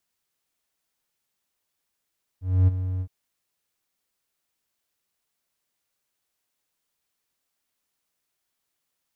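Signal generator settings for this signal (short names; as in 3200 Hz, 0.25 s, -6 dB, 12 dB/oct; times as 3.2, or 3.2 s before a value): ADSR triangle 92.5 Hz, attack 0.266 s, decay 21 ms, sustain -11.5 dB, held 0.60 s, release 67 ms -11 dBFS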